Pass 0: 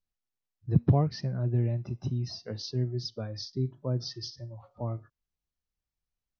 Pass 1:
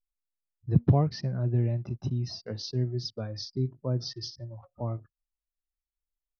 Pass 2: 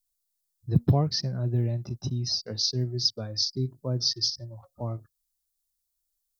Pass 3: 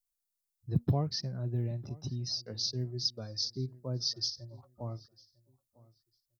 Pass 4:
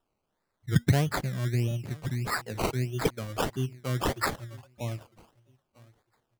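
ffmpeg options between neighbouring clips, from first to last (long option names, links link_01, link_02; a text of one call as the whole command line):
ffmpeg -i in.wav -af "anlmdn=0.001,volume=1dB" out.wav
ffmpeg -i in.wav -af "aexciter=amount=5.5:drive=3.4:freq=3700" out.wav
ffmpeg -i in.wav -filter_complex "[0:a]asplit=2[link_01][link_02];[link_02]adelay=951,lowpass=frequency=3600:poles=1,volume=-22.5dB,asplit=2[link_03][link_04];[link_04]adelay=951,lowpass=frequency=3600:poles=1,volume=0.25[link_05];[link_01][link_03][link_05]amix=inputs=3:normalize=0,volume=-7dB" out.wav
ffmpeg -i in.wav -af "acrusher=samples=20:mix=1:aa=0.000001:lfo=1:lforange=12:lforate=1.6,volume=5.5dB" out.wav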